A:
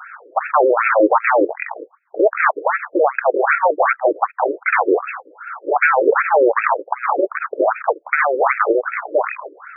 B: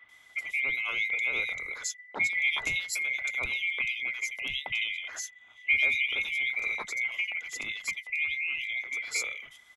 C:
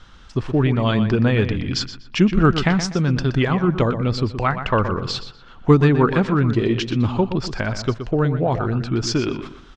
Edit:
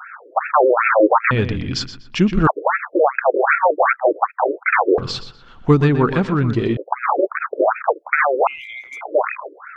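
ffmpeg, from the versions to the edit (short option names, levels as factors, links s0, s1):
-filter_complex "[2:a]asplit=2[s0][s1];[0:a]asplit=4[s2][s3][s4][s5];[s2]atrim=end=1.312[s6];[s0]atrim=start=1.308:end=2.472[s7];[s3]atrim=start=2.468:end=4.982[s8];[s1]atrim=start=4.978:end=6.772[s9];[s4]atrim=start=6.768:end=8.472[s10];[1:a]atrim=start=8.468:end=9.012[s11];[s5]atrim=start=9.008[s12];[s6][s7]acrossfade=d=0.004:c1=hsin:c2=hsin[s13];[s13][s8]acrossfade=d=0.004:c1=hsin:c2=hsin[s14];[s14][s9]acrossfade=d=0.004:c1=hsin:c2=hsin[s15];[s15][s10]acrossfade=d=0.004:c1=hsin:c2=hsin[s16];[s16][s11]acrossfade=d=0.004:c1=hsin:c2=hsin[s17];[s17][s12]acrossfade=d=0.004:c1=hsin:c2=hsin"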